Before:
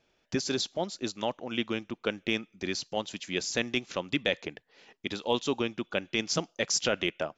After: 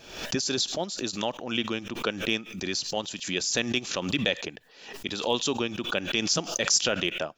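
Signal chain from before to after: treble shelf 3.1 kHz +7 dB; band-stop 2.1 kHz, Q 9.6; swell ahead of each attack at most 78 dB/s

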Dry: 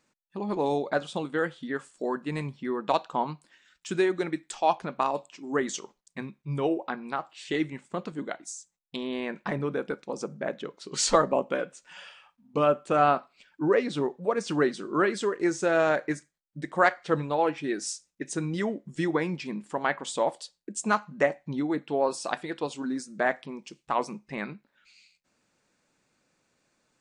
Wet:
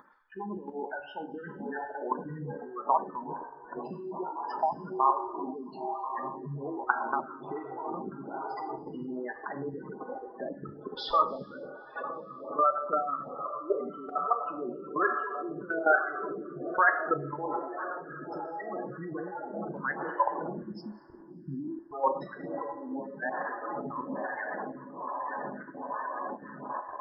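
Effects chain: knee-point frequency compression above 2.1 kHz 1.5:1; dynamic bell 4.5 kHz, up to -5 dB, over -57 dBFS, Q 5.7; in parallel at -0.5 dB: upward compressor, threshold -29 dBFS; on the sum: echo that smears into a reverb 1107 ms, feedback 72%, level -5.5 dB; spectral gate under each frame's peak -10 dB strong; high-order bell 1.2 kHz +14 dB 1.3 oct; spectral selection erased 20.63–21.93 s, 390–4400 Hz; level held to a coarse grid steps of 14 dB; reverberation, pre-delay 3 ms, DRR 5 dB; lamp-driven phase shifter 1.2 Hz; trim -7 dB

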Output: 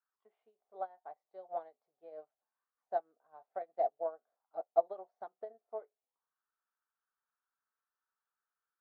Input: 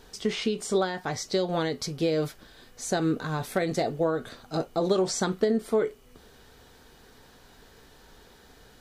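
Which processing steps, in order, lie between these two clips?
auto-wah 690–1400 Hz, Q 4.9, down, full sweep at -31 dBFS; band-pass filter 1.1 kHz, Q 0.64; upward expansion 2.5:1, over -49 dBFS; trim +5.5 dB

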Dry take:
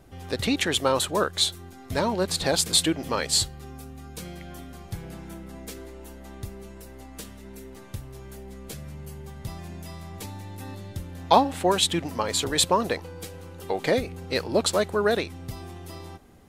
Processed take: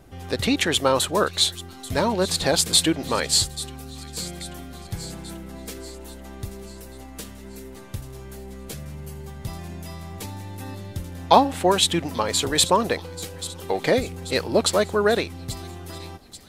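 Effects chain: feedback echo behind a high-pass 836 ms, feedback 52%, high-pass 3.5 kHz, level -13 dB; trim +3 dB

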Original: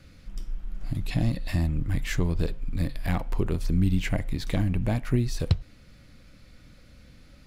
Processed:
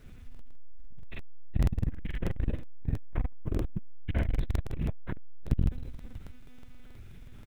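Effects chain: 1.55–3.82 s: Bessel low-pass 2.5 kHz, order 2; doubling 15 ms -6 dB; reverse bouncing-ball echo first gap 70 ms, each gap 1.3×, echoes 5; monotone LPC vocoder at 8 kHz 250 Hz; bass shelf 110 Hz +10 dB; gated-style reverb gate 120 ms rising, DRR 12 dB; bit crusher 10-bit; crackling interface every 0.16 s, samples 2048, repeat, from 0.30 s; transformer saturation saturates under 140 Hz; trim -6.5 dB

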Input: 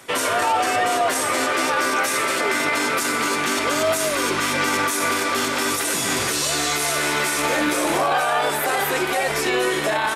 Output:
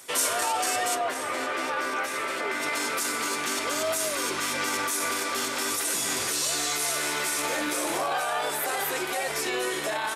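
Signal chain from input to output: tone controls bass -5 dB, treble +11 dB, from 0.94 s treble -5 dB, from 2.61 s treble +5 dB; trim -8 dB

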